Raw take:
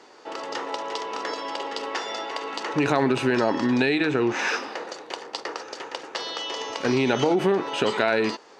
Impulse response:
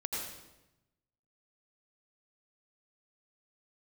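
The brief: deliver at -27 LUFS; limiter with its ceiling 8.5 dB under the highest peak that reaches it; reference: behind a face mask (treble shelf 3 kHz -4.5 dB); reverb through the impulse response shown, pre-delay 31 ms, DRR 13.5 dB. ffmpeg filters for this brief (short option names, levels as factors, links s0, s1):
-filter_complex "[0:a]alimiter=limit=0.178:level=0:latency=1,asplit=2[s0][s1];[1:a]atrim=start_sample=2205,adelay=31[s2];[s1][s2]afir=irnorm=-1:irlink=0,volume=0.15[s3];[s0][s3]amix=inputs=2:normalize=0,highshelf=f=3000:g=-4.5,volume=1.12"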